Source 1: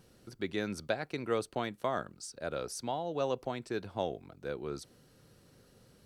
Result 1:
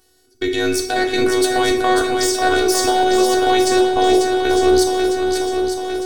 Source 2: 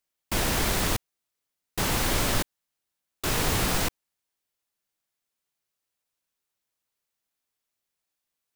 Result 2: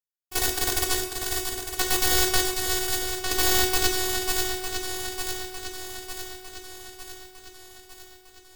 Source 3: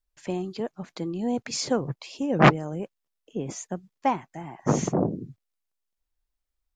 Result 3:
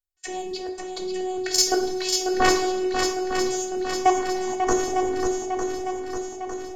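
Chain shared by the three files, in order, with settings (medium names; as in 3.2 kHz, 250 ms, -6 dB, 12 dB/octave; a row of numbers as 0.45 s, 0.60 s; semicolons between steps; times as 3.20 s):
tracing distortion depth 0.024 ms; tone controls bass -3 dB, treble +10 dB; hum notches 60/120/180/240/300/360 Hz; level held to a coarse grid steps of 22 dB; treble shelf 2.3 kHz -5.5 dB; peak limiter -21.5 dBFS; gate -56 dBFS, range -16 dB; robot voice 371 Hz; on a send: shuffle delay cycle 904 ms, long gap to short 1.5:1, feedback 55%, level -6.5 dB; on the sum: two-slope reverb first 0.53 s, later 2.4 s, from -17 dB, DRR 2 dB; peak normalisation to -1.5 dBFS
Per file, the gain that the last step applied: +28.5 dB, +10.5 dB, +16.0 dB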